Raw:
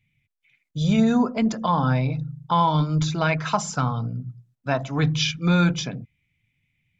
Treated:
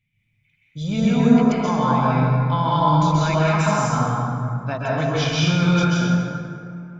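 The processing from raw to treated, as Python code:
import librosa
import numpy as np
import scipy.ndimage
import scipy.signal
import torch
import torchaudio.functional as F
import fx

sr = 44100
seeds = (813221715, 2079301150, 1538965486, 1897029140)

y = fx.rev_plate(x, sr, seeds[0], rt60_s=2.6, hf_ratio=0.45, predelay_ms=115, drr_db=-7.5)
y = y * 10.0 ** (-4.5 / 20.0)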